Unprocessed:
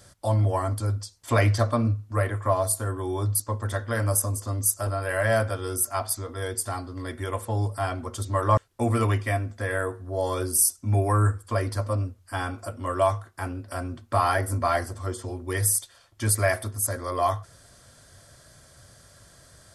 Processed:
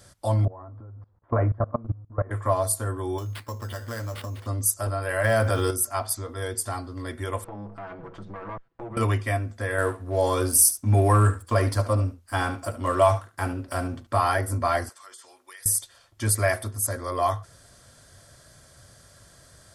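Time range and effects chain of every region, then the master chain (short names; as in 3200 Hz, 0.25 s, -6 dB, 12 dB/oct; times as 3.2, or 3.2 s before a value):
0.45–2.31 G.711 law mismatch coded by mu + LPF 1300 Hz 24 dB/oct + level quantiser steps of 21 dB
3.18–4.47 resonant high shelf 5100 Hz -12 dB, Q 1.5 + compressor 3:1, threshold -31 dBFS + sample-rate reducer 6500 Hz
5.24–5.71 block floating point 7-bit + fast leveller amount 70%
7.44–8.97 minimum comb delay 6.1 ms + LPF 1800 Hz + compressor 3:1, threshold -37 dBFS
9.78–14.07 sample leveller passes 1 + echo 72 ms -13 dB
14.89–15.66 HPF 1400 Hz + compressor, threshold -42 dBFS
whole clip: dry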